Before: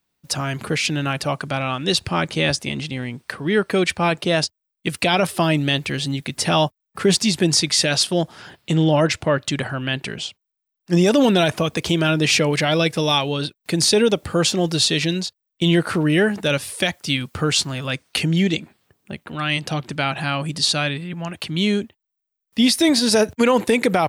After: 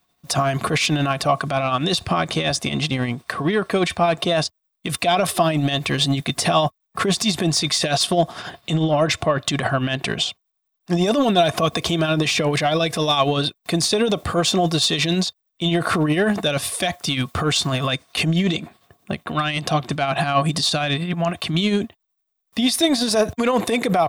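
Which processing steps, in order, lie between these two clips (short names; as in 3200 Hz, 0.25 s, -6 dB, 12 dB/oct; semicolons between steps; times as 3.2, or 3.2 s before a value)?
in parallel at 0 dB: negative-ratio compressor -23 dBFS; on the sum: limiter -8 dBFS, peak gain reduction 9.5 dB; tremolo triangle 11 Hz, depth 55%; soft clip -9.5 dBFS, distortion -23 dB; small resonant body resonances 700/1100/3600 Hz, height 12 dB, ringing for 45 ms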